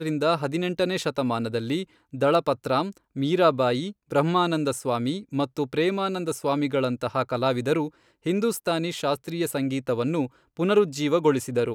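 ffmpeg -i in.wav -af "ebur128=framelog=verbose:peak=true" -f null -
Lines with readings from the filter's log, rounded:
Integrated loudness:
  I:         -25.3 LUFS
  Threshold: -35.3 LUFS
Loudness range:
  LRA:         2.1 LU
  Threshold: -45.4 LUFS
  LRA low:   -26.4 LUFS
  LRA high:  -24.3 LUFS
True peak:
  Peak:       -8.4 dBFS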